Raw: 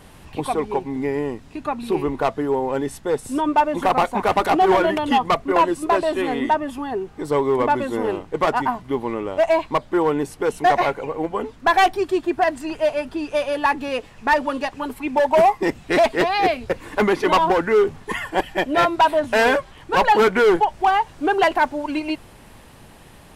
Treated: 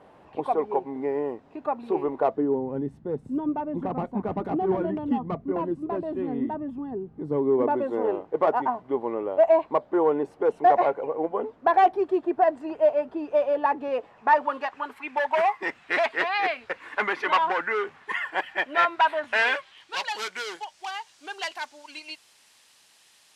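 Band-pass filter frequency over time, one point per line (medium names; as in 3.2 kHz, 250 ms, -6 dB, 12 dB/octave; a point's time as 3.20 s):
band-pass filter, Q 1.2
2.19 s 620 Hz
2.66 s 180 Hz
7.23 s 180 Hz
7.92 s 570 Hz
13.80 s 570 Hz
15.05 s 1.7 kHz
19.25 s 1.7 kHz
20.12 s 5.6 kHz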